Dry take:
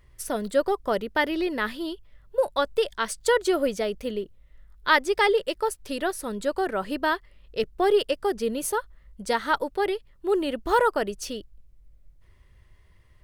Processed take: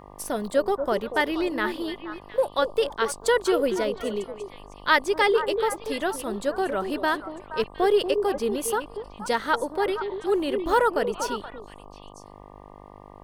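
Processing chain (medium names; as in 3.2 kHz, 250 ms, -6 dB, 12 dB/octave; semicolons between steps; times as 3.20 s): repeats whose band climbs or falls 237 ms, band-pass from 410 Hz, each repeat 1.4 oct, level -5.5 dB; mains buzz 50 Hz, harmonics 24, -47 dBFS 0 dB/octave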